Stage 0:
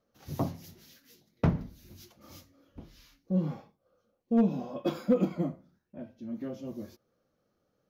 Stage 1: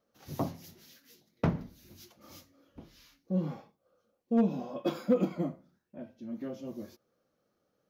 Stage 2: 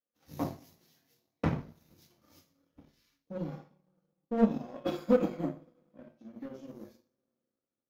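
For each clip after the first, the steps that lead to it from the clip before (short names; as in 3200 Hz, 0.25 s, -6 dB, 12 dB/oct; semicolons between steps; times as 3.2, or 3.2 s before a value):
low shelf 110 Hz -9.5 dB
two-slope reverb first 0.45 s, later 3.4 s, from -27 dB, DRR -1.5 dB; power-law curve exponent 1.4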